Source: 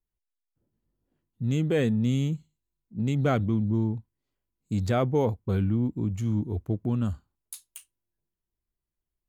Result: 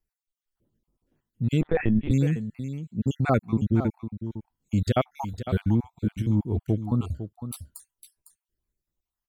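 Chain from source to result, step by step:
time-frequency cells dropped at random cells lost 50%
on a send: single-tap delay 505 ms −11 dB
0:01.61–0:02.11: on the sum: linear-prediction vocoder at 8 kHz pitch kept
level +4 dB

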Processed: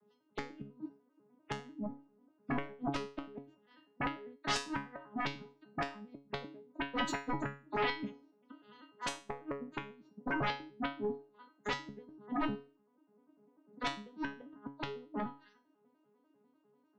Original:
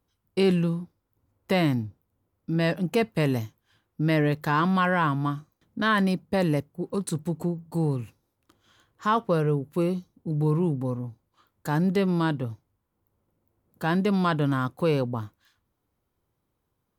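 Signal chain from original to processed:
vocoder with an arpeggio as carrier minor triad, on G#3, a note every 99 ms
spectral peaks only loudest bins 64
gate with flip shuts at −20 dBFS, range −38 dB
sine wavefolder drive 18 dB, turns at −18.5 dBFS
tuned comb filter 140 Hz, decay 0.36 s, harmonics all, mix 90%

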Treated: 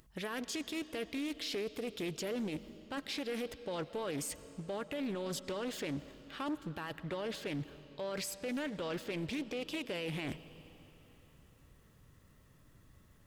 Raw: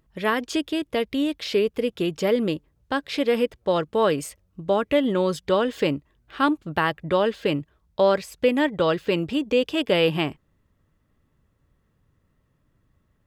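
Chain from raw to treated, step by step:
high-shelf EQ 3,700 Hz +11.5 dB
reversed playback
downward compressor 6 to 1, threshold −32 dBFS, peak gain reduction 17 dB
reversed playback
brickwall limiter −32 dBFS, peak gain reduction 12.5 dB
soft clipping −34 dBFS, distortion −19 dB
on a send at −14 dB: convolution reverb RT60 3.6 s, pre-delay 60 ms
on the sum: highs frequency-modulated by the lows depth 0.29 ms
level +3.5 dB

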